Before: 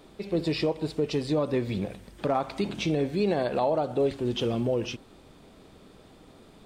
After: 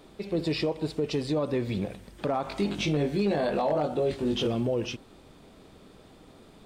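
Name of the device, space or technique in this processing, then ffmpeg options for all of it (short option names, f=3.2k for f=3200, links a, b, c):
clipper into limiter: -filter_complex "[0:a]asettb=1/sr,asplit=3[a][b][c];[a]atrim=end=2.434[d];[b]atrim=start=2.43:end=4.47,asetpts=PTS-STARTPTS,afade=t=in:d=0.004:c=qsin,afade=t=out:st=2.036:d=0.004:c=qsin,asplit=2[e][f];[f]adelay=20,volume=-2dB[g];[e][g]amix=inputs=2:normalize=0,atrim=end_sample=89964[h];[c]atrim=start=4.466[i];[d][h]acrossfade=d=0.004:c1=hsin:c2=qsin[j];[j][i]acrossfade=d=0.004:c1=qsin:c2=hsin,asoftclip=type=hard:threshold=-15.5dB,alimiter=limit=-19dB:level=0:latency=1:release=13"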